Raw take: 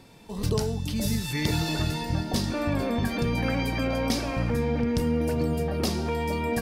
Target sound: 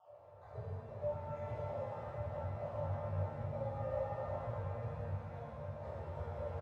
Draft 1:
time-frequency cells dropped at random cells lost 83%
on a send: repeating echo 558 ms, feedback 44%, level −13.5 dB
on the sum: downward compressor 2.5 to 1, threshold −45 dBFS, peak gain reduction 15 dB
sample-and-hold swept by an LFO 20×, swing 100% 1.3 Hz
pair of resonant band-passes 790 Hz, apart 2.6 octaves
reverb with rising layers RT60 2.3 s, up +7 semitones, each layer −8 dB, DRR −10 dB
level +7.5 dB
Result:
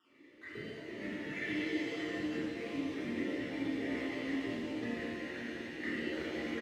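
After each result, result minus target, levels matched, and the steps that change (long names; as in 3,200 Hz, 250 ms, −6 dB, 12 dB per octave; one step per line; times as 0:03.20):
250 Hz band +13.0 dB; downward compressor: peak gain reduction −5 dB
change: pair of resonant band-passes 240 Hz, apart 2.6 octaves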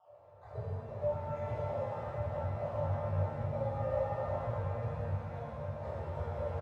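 downward compressor: peak gain reduction −5 dB
change: downward compressor 2.5 to 1, threshold −53.5 dBFS, peak gain reduction 20 dB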